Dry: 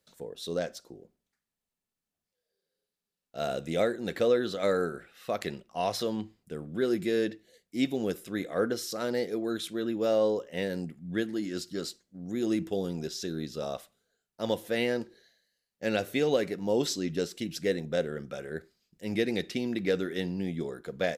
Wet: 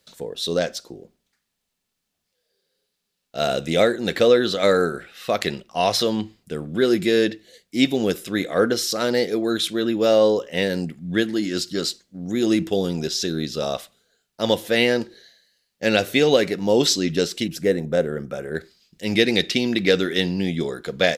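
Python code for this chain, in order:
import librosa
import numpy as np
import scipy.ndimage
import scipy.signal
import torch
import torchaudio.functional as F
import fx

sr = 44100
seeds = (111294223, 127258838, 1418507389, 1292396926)

y = fx.peak_eq(x, sr, hz=3800.0, db=fx.steps((0.0, 5.5), (17.48, -7.0), (18.55, 8.5)), octaves=1.8)
y = y * librosa.db_to_amplitude(9.0)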